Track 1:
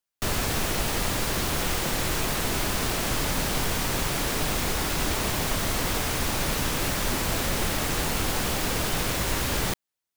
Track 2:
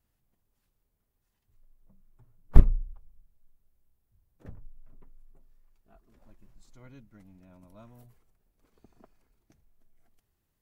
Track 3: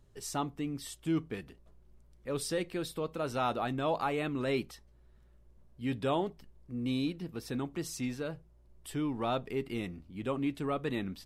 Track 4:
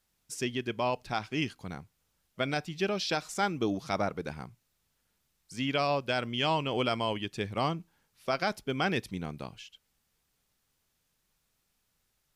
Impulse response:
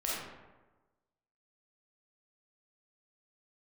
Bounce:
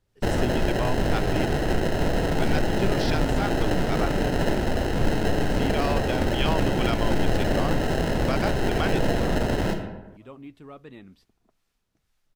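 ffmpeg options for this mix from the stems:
-filter_complex "[0:a]acrusher=samples=38:mix=1:aa=0.000001,volume=-0.5dB,asplit=2[link_01][link_02];[link_02]volume=-7.5dB[link_03];[1:a]adelay=2450,volume=-10dB[link_04];[2:a]volume=-10dB[link_05];[3:a]acrossover=split=680[link_06][link_07];[link_06]aeval=exprs='val(0)*(1-0.5/2+0.5/2*cos(2*PI*2.1*n/s))':channel_layout=same[link_08];[link_07]aeval=exprs='val(0)*(1-0.5/2-0.5/2*cos(2*PI*2.1*n/s))':channel_layout=same[link_09];[link_08][link_09]amix=inputs=2:normalize=0,volume=2dB[link_10];[4:a]atrim=start_sample=2205[link_11];[link_03][link_11]afir=irnorm=-1:irlink=0[link_12];[link_01][link_04][link_05][link_10][link_12]amix=inputs=5:normalize=0,highshelf=frequency=7100:gain=-9.5"

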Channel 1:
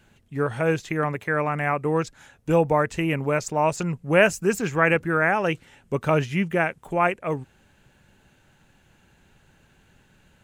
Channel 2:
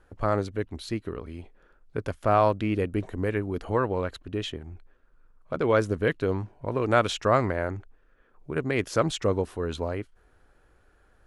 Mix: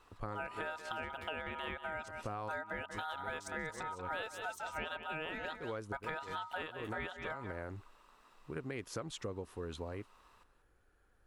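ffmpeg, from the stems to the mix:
ffmpeg -i stem1.wav -i stem2.wav -filter_complex "[0:a]aeval=exprs='val(0)*sin(2*PI*1100*n/s)':channel_layout=same,volume=-4.5dB,asplit=3[link_01][link_02][link_03];[link_02]volume=-12.5dB[link_04];[1:a]highshelf=frequency=9800:gain=6,bandreject=frequency=630:width=12,volume=-10dB[link_05];[link_03]apad=whole_len=496968[link_06];[link_05][link_06]sidechaincompress=threshold=-38dB:ratio=8:attack=16:release=218[link_07];[link_04]aecho=0:1:187:1[link_08];[link_01][link_07][link_08]amix=inputs=3:normalize=0,acompressor=threshold=-37dB:ratio=12" out.wav

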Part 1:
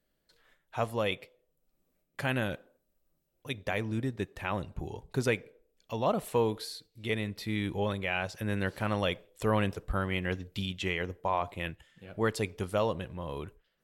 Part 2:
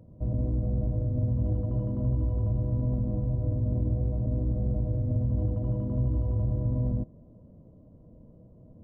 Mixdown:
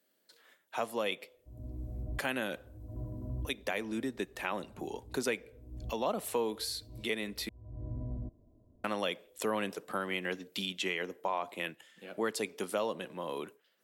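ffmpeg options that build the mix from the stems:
ffmpeg -i stem1.wav -i stem2.wav -filter_complex "[0:a]highpass=frequency=220:width=0.5412,highpass=frequency=220:width=1.3066,volume=2.5dB,asplit=3[link_01][link_02][link_03];[link_01]atrim=end=7.49,asetpts=PTS-STARTPTS,afade=type=out:start_time=7.486:duration=0.004:curve=hsin[link_04];[link_02]atrim=start=7.49:end=8.84,asetpts=PTS-STARTPTS,volume=0[link_05];[link_03]atrim=start=8.84,asetpts=PTS-STARTPTS,afade=type=in:duration=0.004:curve=hsin[link_06];[link_04][link_05][link_06]concat=n=3:v=0:a=1,asplit=2[link_07][link_08];[1:a]aecho=1:1:2.9:0.65,dynaudnorm=framelen=450:gausssize=3:maxgain=6dB,adelay=1250,volume=-17.5dB[link_09];[link_08]apad=whole_len=444683[link_10];[link_09][link_10]sidechaincompress=threshold=-58dB:ratio=6:attack=8.3:release=229[link_11];[link_07][link_11]amix=inputs=2:normalize=0,highshelf=frequency=4500:gain=6,acrossover=split=130[link_12][link_13];[link_13]acompressor=threshold=-34dB:ratio=2[link_14];[link_12][link_14]amix=inputs=2:normalize=0" out.wav

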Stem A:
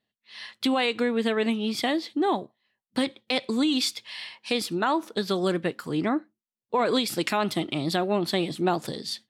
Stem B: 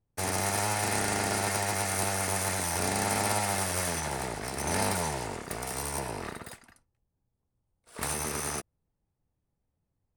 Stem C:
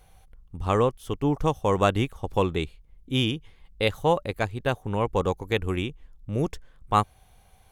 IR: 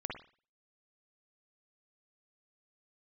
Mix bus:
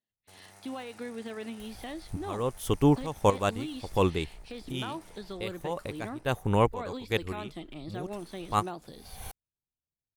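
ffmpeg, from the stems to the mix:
-filter_complex "[0:a]deesser=0.9,volume=-14dB,asplit=2[link_01][link_02];[1:a]acompressor=threshold=-44dB:ratio=1.5,adelay=100,volume=-19.5dB[link_03];[2:a]highshelf=frequency=7200:gain=9,acompressor=mode=upward:threshold=-28dB:ratio=2.5,adelay=1600,volume=2.5dB[link_04];[link_02]apad=whole_len=410734[link_05];[link_04][link_05]sidechaincompress=threshold=-55dB:ratio=5:attack=8:release=159[link_06];[link_01][link_03][link_06]amix=inputs=3:normalize=0"

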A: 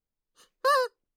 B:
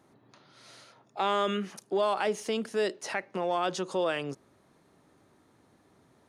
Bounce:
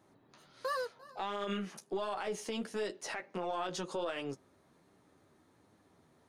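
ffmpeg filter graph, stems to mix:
ffmpeg -i stem1.wav -i stem2.wav -filter_complex "[0:a]volume=-5.5dB,asplit=2[link_01][link_02];[link_02]volume=-23dB[link_03];[1:a]aeval=exprs='0.168*(cos(1*acos(clip(val(0)/0.168,-1,1)))-cos(1*PI/2))+0.00841*(cos(4*acos(clip(val(0)/0.168,-1,1)))-cos(4*PI/2))':channel_layout=same,volume=0dB[link_04];[link_03]aecho=0:1:346:1[link_05];[link_01][link_04][link_05]amix=inputs=3:normalize=0,flanger=delay=9.3:depth=3.9:regen=-28:speed=1.4:shape=triangular,alimiter=level_in=3.5dB:limit=-24dB:level=0:latency=1:release=66,volume=-3.5dB" out.wav

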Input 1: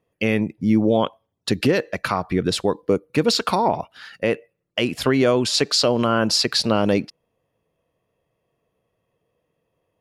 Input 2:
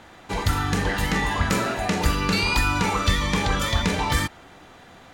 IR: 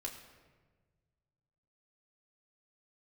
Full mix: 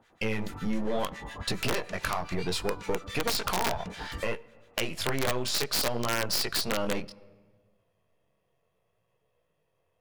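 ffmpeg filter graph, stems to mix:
-filter_complex "[0:a]aeval=exprs='if(lt(val(0),0),0.447*val(0),val(0))':channel_layout=same,equalizer=frequency=270:width_type=o:width=0.8:gain=-10,flanger=delay=16:depth=7.5:speed=0.65,volume=3dB,asplit=2[link_01][link_02];[link_02]volume=-15.5dB[link_03];[1:a]lowshelf=frequency=110:gain=-2,bandreject=frequency=70.86:width_type=h:width=4,bandreject=frequency=141.72:width_type=h:width=4,bandreject=frequency=212.58:width_type=h:width=4,bandreject=frequency=283.44:width_type=h:width=4,bandreject=frequency=354.3:width_type=h:width=4,bandreject=frequency=425.16:width_type=h:width=4,bandreject=frequency=496.02:width_type=h:width=4,bandreject=frequency=566.88:width_type=h:width=4,bandreject=frequency=637.74:width_type=h:width=4,bandreject=frequency=708.6:width_type=h:width=4,bandreject=frequency=779.46:width_type=h:width=4,bandreject=frequency=850.32:width_type=h:width=4,bandreject=frequency=921.18:width_type=h:width=4,bandreject=frequency=992.04:width_type=h:width=4,bandreject=frequency=1062.9:width_type=h:width=4,bandreject=frequency=1133.76:width_type=h:width=4,bandreject=frequency=1204.62:width_type=h:width=4,bandreject=frequency=1275.48:width_type=h:width=4,bandreject=frequency=1346.34:width_type=h:width=4,bandreject=frequency=1417.2:width_type=h:width=4,bandreject=frequency=1488.06:width_type=h:width=4,bandreject=frequency=1558.92:width_type=h:width=4,bandreject=frequency=1629.78:width_type=h:width=4,bandreject=frequency=1700.64:width_type=h:width=4,bandreject=frequency=1771.5:width_type=h:width=4,bandreject=frequency=1842.36:width_type=h:width=4,bandreject=frequency=1913.22:width_type=h:width=4,bandreject=frequency=1984.08:width_type=h:width=4,bandreject=frequency=2054.94:width_type=h:width=4,bandreject=frequency=2125.8:width_type=h:width=4,acrossover=split=1200[link_04][link_05];[link_04]aeval=exprs='val(0)*(1-1/2+1/2*cos(2*PI*7.2*n/s))':channel_layout=same[link_06];[link_05]aeval=exprs='val(0)*(1-1/2-1/2*cos(2*PI*7.2*n/s))':channel_layout=same[link_07];[link_06][link_07]amix=inputs=2:normalize=0,volume=-11.5dB[link_08];[2:a]atrim=start_sample=2205[link_09];[link_03][link_09]afir=irnorm=-1:irlink=0[link_10];[link_01][link_08][link_10]amix=inputs=3:normalize=0,aeval=exprs='(mod(3.76*val(0)+1,2)-1)/3.76':channel_layout=same,acompressor=threshold=-30dB:ratio=2"

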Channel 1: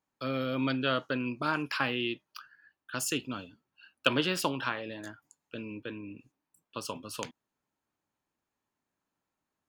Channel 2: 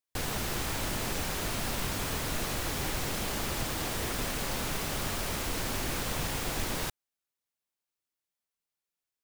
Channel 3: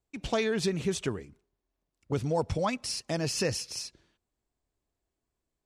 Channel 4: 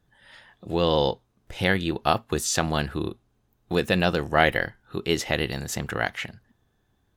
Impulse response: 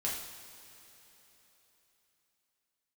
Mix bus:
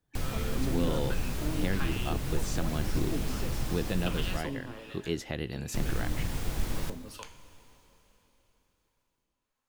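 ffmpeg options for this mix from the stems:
-filter_complex "[0:a]aeval=exprs='if(lt(val(0),0),0.708*val(0),val(0))':channel_layout=same,acrossover=split=660[link_01][link_02];[link_01]aeval=exprs='val(0)*(1-1/2+1/2*cos(2*PI*1.3*n/s))':channel_layout=same[link_03];[link_02]aeval=exprs='val(0)*(1-1/2-1/2*cos(2*PI*1.3*n/s))':channel_layout=same[link_04];[link_03][link_04]amix=inputs=2:normalize=0,volume=0dB,asplit=2[link_05][link_06];[link_06]volume=-7.5dB[link_07];[1:a]lowshelf=frequency=87:gain=10,volume=-3.5dB,asplit=3[link_08][link_09][link_10];[link_08]atrim=end=4.37,asetpts=PTS-STARTPTS,afade=type=out:start_time=4.366:duration=0.004:curve=hsin[link_11];[link_09]atrim=start=4.37:end=5.74,asetpts=PTS-STARTPTS,volume=0[link_12];[link_10]atrim=start=5.74,asetpts=PTS-STARTPTS,afade=type=in:duration=0.004:curve=hsin[link_13];[link_11][link_12][link_13]concat=n=3:v=0:a=1,asplit=2[link_14][link_15];[link_15]volume=-11dB[link_16];[2:a]volume=-10dB[link_17];[3:a]dynaudnorm=framelen=150:gausssize=3:maxgain=14.5dB,volume=-13dB[link_18];[4:a]atrim=start_sample=2205[link_19];[link_07][link_16]amix=inputs=2:normalize=0[link_20];[link_20][link_19]afir=irnorm=-1:irlink=0[link_21];[link_05][link_14][link_17][link_18][link_21]amix=inputs=5:normalize=0,acrossover=split=390[link_22][link_23];[link_23]acompressor=threshold=-50dB:ratio=1.5[link_24];[link_22][link_24]amix=inputs=2:normalize=0"

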